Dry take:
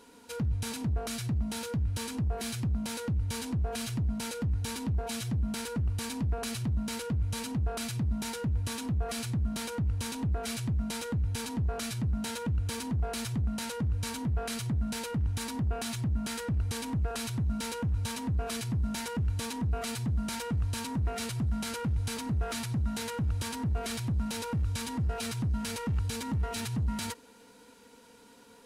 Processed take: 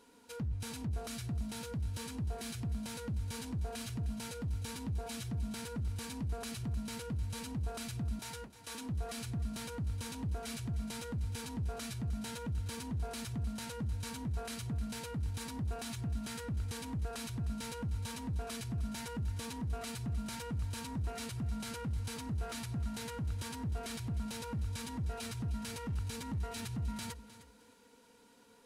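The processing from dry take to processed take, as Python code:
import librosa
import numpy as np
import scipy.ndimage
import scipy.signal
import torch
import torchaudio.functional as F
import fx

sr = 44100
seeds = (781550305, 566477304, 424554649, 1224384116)

y = fx.highpass(x, sr, hz=470.0, slope=12, at=(8.19, 8.75))
y = fx.echo_feedback(y, sr, ms=308, feedback_pct=23, wet_db=-15)
y = y * 10.0 ** (-7.0 / 20.0)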